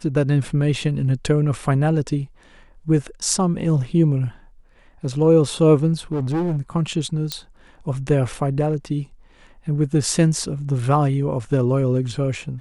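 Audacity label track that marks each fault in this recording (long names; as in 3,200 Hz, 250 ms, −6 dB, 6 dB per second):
6.120000	6.580000	clipping −18.5 dBFS
7.320000	7.320000	click −10 dBFS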